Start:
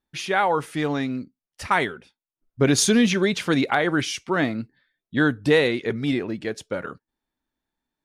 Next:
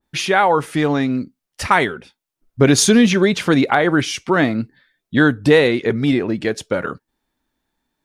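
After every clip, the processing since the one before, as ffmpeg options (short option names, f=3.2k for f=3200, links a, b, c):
-filter_complex "[0:a]asplit=2[a][b];[b]acompressor=threshold=-28dB:ratio=6,volume=-1.5dB[c];[a][c]amix=inputs=2:normalize=0,adynamicequalizer=threshold=0.02:dfrequency=1700:dqfactor=0.7:tfrequency=1700:tqfactor=0.7:attack=5:release=100:ratio=0.375:range=2:mode=cutabove:tftype=highshelf,volume=4.5dB"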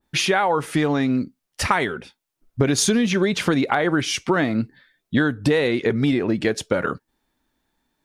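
-af "acompressor=threshold=-18dB:ratio=6,volume=2dB"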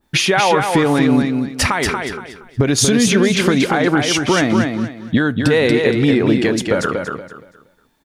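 -filter_complex "[0:a]alimiter=limit=-13.5dB:level=0:latency=1:release=454,asplit=2[a][b];[b]aecho=0:1:235|470|705|940:0.562|0.152|0.041|0.0111[c];[a][c]amix=inputs=2:normalize=0,volume=8.5dB"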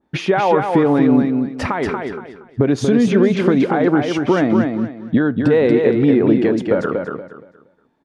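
-af "bandpass=f=370:t=q:w=0.52:csg=0,volume=1.5dB"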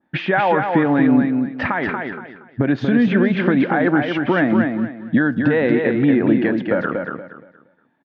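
-filter_complex "[0:a]highpass=120,equalizer=f=420:t=q:w=4:g=-9,equalizer=f=1.1k:t=q:w=4:g=-3,equalizer=f=1.7k:t=q:w=4:g=8,lowpass=f=3.5k:w=0.5412,lowpass=f=3.5k:w=1.3066,asplit=2[a][b];[b]adelay=110,highpass=300,lowpass=3.4k,asoftclip=type=hard:threshold=-12dB,volume=-25dB[c];[a][c]amix=inputs=2:normalize=0"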